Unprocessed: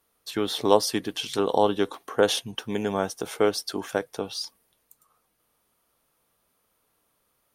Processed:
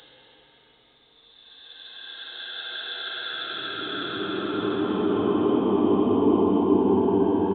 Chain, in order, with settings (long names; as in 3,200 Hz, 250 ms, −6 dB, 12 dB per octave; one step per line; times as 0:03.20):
extreme stretch with random phases 42×, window 0.10 s, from 0:03.62
downsampling to 8,000 Hz
level +8 dB